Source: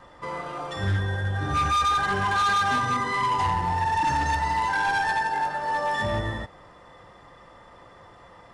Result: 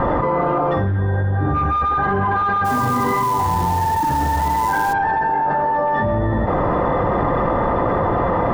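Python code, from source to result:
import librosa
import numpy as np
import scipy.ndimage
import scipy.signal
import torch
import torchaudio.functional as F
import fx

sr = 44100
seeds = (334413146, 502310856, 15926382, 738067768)

y = scipy.signal.sosfilt(scipy.signal.butter(2, 1100.0, 'lowpass', fs=sr, output='sos'), x)
y = fx.peak_eq(y, sr, hz=270.0, db=3.0, octaves=1.3)
y = fx.quant_float(y, sr, bits=2, at=(2.64, 4.92), fade=0.02)
y = fx.env_flatten(y, sr, amount_pct=100)
y = F.gain(torch.from_numpy(y), 3.0).numpy()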